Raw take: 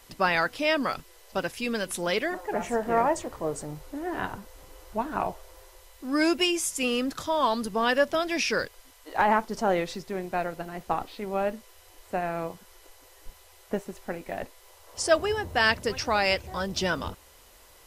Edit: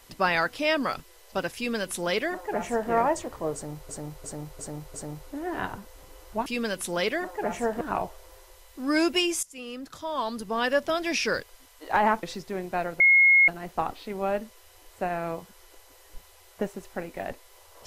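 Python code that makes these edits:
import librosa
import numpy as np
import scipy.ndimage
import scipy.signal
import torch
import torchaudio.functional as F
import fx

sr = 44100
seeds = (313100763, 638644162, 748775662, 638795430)

y = fx.edit(x, sr, fx.duplicate(start_s=1.56, length_s=1.35, to_s=5.06),
    fx.repeat(start_s=3.54, length_s=0.35, count=5),
    fx.fade_in_from(start_s=6.68, length_s=1.59, floor_db=-18.5),
    fx.cut(start_s=9.48, length_s=0.35),
    fx.insert_tone(at_s=10.6, length_s=0.48, hz=2160.0, db=-14.0), tone=tone)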